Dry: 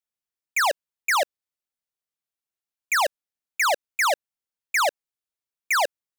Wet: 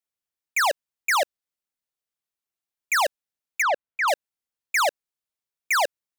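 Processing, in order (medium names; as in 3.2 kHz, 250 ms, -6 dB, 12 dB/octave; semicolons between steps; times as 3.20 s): 3.62–4.08 s: low-pass 2.2 kHz 12 dB/octave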